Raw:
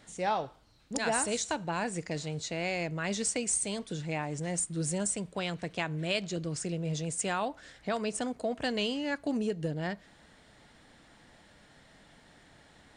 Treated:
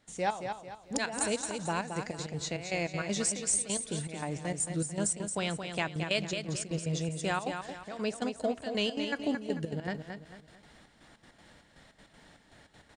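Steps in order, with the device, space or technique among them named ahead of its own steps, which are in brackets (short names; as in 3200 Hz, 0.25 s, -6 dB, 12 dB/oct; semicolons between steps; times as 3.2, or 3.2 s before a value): trance gate with a delay (step gate ".xxx..xx.x" 199 bpm -12 dB; feedback echo 0.222 s, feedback 37%, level -7 dB); gain +1 dB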